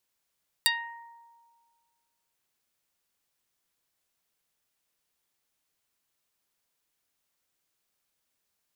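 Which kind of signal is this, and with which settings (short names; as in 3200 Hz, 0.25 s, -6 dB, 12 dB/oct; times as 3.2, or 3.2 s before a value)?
plucked string A#5, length 1.68 s, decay 1.77 s, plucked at 0.14, dark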